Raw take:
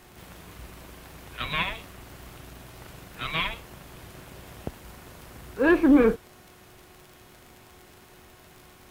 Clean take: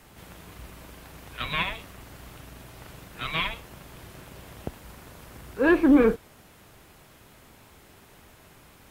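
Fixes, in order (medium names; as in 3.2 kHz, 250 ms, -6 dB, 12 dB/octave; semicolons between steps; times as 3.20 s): de-click; de-hum 364.4 Hz, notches 19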